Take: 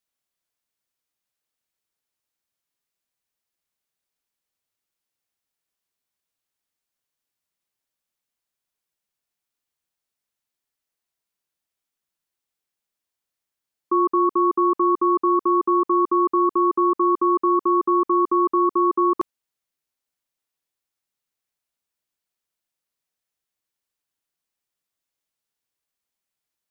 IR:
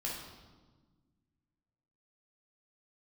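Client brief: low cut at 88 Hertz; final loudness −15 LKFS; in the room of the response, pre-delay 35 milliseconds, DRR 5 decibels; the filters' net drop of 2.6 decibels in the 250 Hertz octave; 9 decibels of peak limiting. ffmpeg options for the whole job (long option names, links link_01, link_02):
-filter_complex "[0:a]highpass=88,equalizer=frequency=250:width_type=o:gain=-5,alimiter=limit=-22dB:level=0:latency=1,asplit=2[link_01][link_02];[1:a]atrim=start_sample=2205,adelay=35[link_03];[link_02][link_03]afir=irnorm=-1:irlink=0,volume=-7dB[link_04];[link_01][link_04]amix=inputs=2:normalize=0,volume=13dB"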